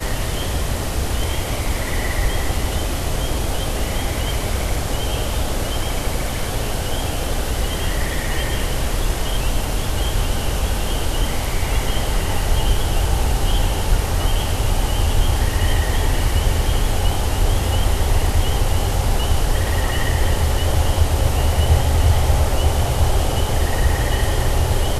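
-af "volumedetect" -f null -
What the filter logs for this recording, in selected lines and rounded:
mean_volume: -17.6 dB
max_volume: -2.4 dB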